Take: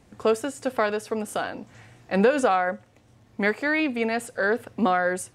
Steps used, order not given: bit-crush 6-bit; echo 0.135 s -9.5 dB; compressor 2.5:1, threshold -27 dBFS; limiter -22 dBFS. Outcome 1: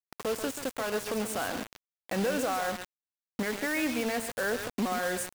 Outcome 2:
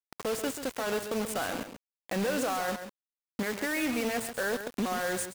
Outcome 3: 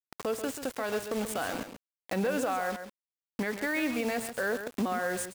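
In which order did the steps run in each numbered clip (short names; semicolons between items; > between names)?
compressor > limiter > echo > bit-crush; limiter > compressor > bit-crush > echo; bit-crush > compressor > limiter > echo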